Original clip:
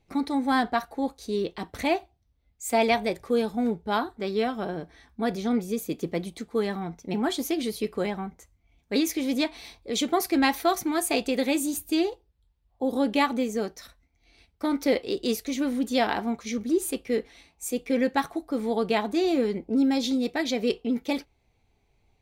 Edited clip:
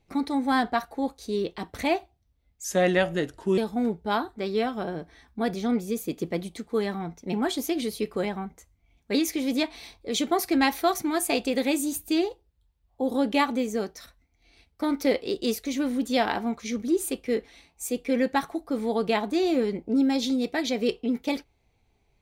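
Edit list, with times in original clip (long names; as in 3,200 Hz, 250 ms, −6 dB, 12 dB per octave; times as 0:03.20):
0:02.64–0:03.39: play speed 80%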